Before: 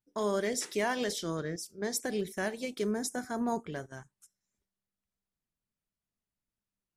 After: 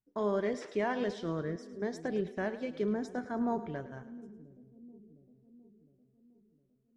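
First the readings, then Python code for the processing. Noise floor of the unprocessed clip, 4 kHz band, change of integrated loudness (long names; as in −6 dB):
below −85 dBFS, −11.0 dB, −1.5 dB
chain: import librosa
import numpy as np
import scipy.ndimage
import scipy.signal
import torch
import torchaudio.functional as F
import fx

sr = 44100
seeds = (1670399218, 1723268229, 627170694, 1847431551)

y = fx.spacing_loss(x, sr, db_at_10k=30)
y = fx.echo_split(y, sr, split_hz=390.0, low_ms=709, high_ms=107, feedback_pct=52, wet_db=-14)
y = y * librosa.db_to_amplitude(1.0)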